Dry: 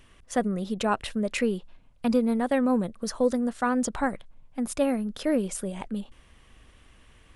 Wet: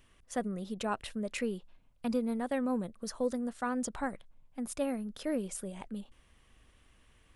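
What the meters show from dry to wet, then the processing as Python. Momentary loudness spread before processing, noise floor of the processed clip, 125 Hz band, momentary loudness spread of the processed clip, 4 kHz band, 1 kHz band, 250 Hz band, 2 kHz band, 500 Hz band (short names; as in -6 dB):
11 LU, -65 dBFS, -8.5 dB, 11 LU, -8.0 dB, -8.5 dB, -8.5 dB, -8.5 dB, -8.5 dB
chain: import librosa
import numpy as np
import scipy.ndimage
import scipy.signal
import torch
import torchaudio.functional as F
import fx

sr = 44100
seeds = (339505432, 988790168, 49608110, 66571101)

y = fx.high_shelf(x, sr, hz=8900.0, db=5.0)
y = y * 10.0 ** (-8.5 / 20.0)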